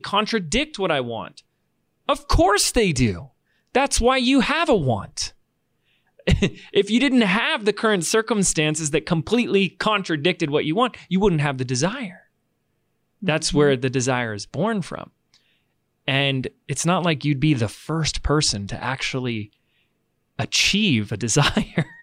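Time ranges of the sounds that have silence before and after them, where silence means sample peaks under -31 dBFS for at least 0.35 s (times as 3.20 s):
2.09–3.23 s
3.75–5.29 s
6.27–12.10 s
13.23–15.03 s
16.08–19.45 s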